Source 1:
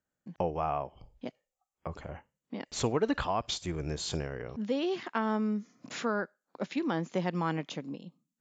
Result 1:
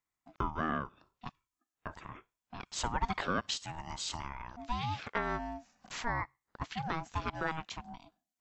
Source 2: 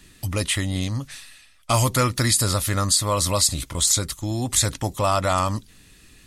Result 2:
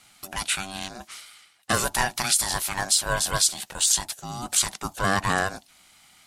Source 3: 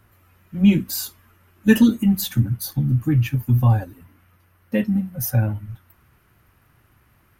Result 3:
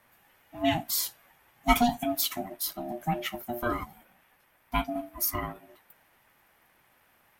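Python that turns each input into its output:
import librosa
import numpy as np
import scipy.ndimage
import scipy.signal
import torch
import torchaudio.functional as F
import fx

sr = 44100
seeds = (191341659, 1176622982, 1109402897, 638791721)

y = scipy.signal.sosfilt(scipy.signal.butter(2, 380.0, 'highpass', fs=sr, output='sos'), x)
y = y * np.sin(2.0 * np.pi * 480.0 * np.arange(len(y)) / sr)
y = y * librosa.db_to_amplitude(1.5)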